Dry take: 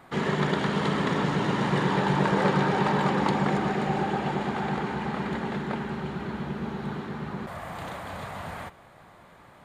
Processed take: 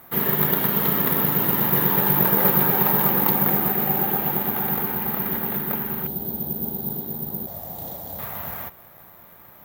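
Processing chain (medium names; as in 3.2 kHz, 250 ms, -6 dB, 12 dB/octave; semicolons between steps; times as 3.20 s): 6.07–8.19 s: high-order bell 1.7 kHz -15 dB; careless resampling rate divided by 3×, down none, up zero stuff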